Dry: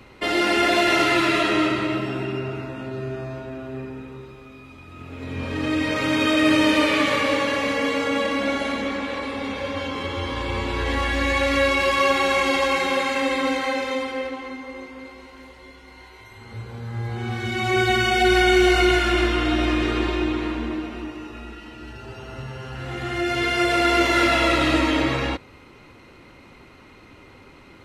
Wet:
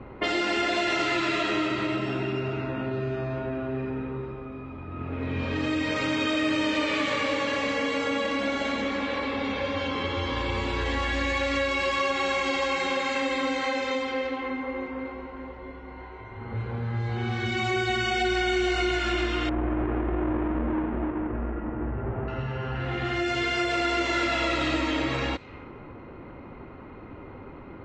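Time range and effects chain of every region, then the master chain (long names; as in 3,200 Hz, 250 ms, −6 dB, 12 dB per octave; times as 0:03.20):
0:19.49–0:22.28: each half-wave held at its own peak + Gaussian smoothing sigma 5 samples + downward compressor 5 to 1, threshold −21 dBFS
whole clip: elliptic low-pass filter 7,700 Hz, stop band 40 dB; low-pass that shuts in the quiet parts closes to 990 Hz, open at −21 dBFS; downward compressor 3 to 1, threshold −35 dBFS; level +7 dB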